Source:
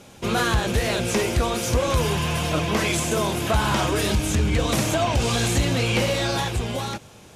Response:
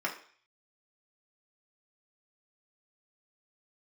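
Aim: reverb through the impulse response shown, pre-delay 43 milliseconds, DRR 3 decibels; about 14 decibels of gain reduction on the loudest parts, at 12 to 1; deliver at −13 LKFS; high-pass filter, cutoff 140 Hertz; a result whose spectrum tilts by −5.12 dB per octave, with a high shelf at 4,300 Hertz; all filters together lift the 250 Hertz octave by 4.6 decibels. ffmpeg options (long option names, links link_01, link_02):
-filter_complex "[0:a]highpass=140,equalizer=frequency=250:width_type=o:gain=7,highshelf=frequency=4300:gain=-6.5,acompressor=threshold=-31dB:ratio=12,asplit=2[link_01][link_02];[1:a]atrim=start_sample=2205,adelay=43[link_03];[link_02][link_03]afir=irnorm=-1:irlink=0,volume=-10dB[link_04];[link_01][link_04]amix=inputs=2:normalize=0,volume=20.5dB"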